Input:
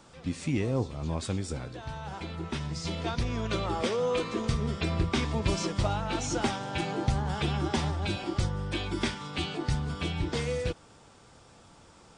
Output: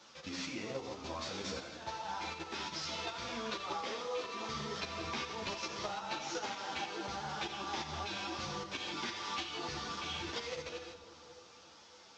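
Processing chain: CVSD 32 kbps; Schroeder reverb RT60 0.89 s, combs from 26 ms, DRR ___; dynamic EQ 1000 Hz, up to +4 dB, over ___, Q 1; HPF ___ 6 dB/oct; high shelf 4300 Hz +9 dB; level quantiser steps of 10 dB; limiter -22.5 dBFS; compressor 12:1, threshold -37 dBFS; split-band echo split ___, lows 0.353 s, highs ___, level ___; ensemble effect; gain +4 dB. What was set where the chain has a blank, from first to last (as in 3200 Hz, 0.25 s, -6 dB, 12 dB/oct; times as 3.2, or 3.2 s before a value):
4 dB, -44 dBFS, 510 Hz, 1000 Hz, 84 ms, -12 dB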